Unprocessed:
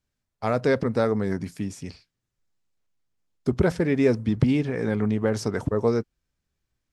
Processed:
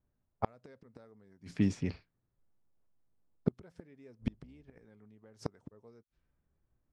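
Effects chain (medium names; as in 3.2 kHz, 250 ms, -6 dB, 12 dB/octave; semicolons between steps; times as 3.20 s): 4.21–4.85 s: octave divider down 2 oct, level -5 dB; level-controlled noise filter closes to 1 kHz, open at -21.5 dBFS; inverted gate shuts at -17 dBFS, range -37 dB; trim +2 dB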